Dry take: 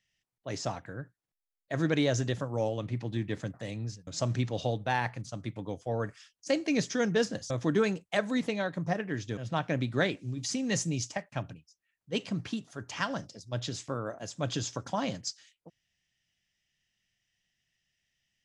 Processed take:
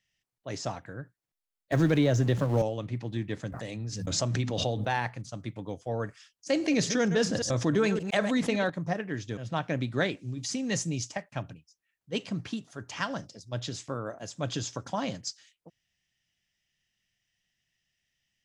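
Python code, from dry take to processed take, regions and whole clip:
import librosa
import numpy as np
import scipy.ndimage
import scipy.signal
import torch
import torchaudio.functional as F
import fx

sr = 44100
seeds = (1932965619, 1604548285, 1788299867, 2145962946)

y = fx.chain(x, sr, fx.zero_step(step_db=-40.0),
    fx.tilt_eq(slope=-1.5),
    fx.band_squash(depth_pct=70), at=(1.72, 2.62))
y = fx.chain(y, sr, fx.hum_notches(base_hz=50, count=5),
    fx.pre_swell(db_per_s=34.0), at=(3.52, 4.97))
y = fx.chain(y, sr, fx.reverse_delay(ms=114, wet_db=-13.0),
    fx.env_flatten(amount_pct=50), at=(6.51, 8.7))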